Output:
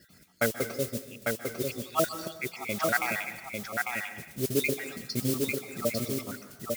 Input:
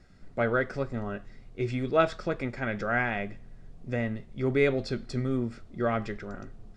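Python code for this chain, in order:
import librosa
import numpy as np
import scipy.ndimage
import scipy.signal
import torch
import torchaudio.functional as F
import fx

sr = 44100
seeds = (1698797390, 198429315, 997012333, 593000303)

y = fx.spec_dropout(x, sr, seeds[0], share_pct=71)
y = fx.mod_noise(y, sr, seeds[1], snr_db=18)
y = scipy.signal.sosfilt(scipy.signal.butter(2, 110.0, 'highpass', fs=sr, output='sos'), y)
y = fx.high_shelf(y, sr, hz=2300.0, db=12.0)
y = y + 10.0 ** (-3.5 / 20.0) * np.pad(y, (int(848 * sr / 1000.0), 0))[:len(y)]
y = fx.rev_plate(y, sr, seeds[2], rt60_s=0.91, hf_ratio=0.8, predelay_ms=120, drr_db=10.5)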